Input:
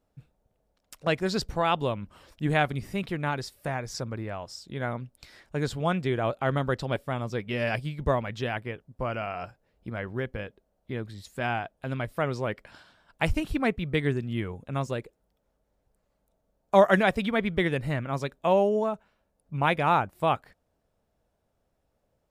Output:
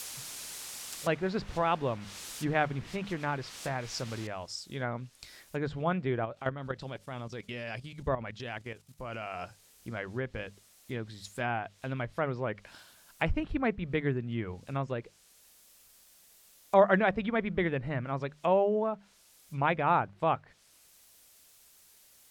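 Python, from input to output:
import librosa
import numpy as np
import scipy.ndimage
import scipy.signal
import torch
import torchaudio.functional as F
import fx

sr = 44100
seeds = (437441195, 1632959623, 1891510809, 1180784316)

y = fx.noise_floor_step(x, sr, seeds[0], at_s=4.27, before_db=-42, after_db=-62, tilt_db=0.0)
y = fx.level_steps(y, sr, step_db=12, at=(6.24, 9.39), fade=0.02)
y = fx.env_lowpass_down(y, sr, base_hz=1900.0, full_db=-25.5)
y = fx.high_shelf(y, sr, hz=3300.0, db=9.0)
y = fx.hum_notches(y, sr, base_hz=50, count=4)
y = y * librosa.db_to_amplitude(-3.5)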